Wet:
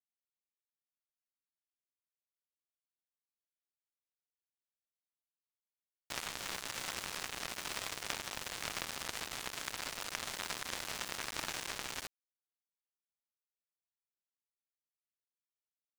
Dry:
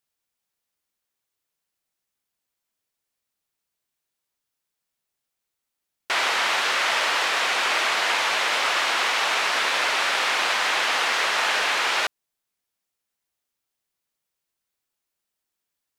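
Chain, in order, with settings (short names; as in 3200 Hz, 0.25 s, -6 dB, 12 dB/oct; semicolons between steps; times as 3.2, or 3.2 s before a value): power-law curve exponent 3; sample gate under -32 dBFS; gain -2 dB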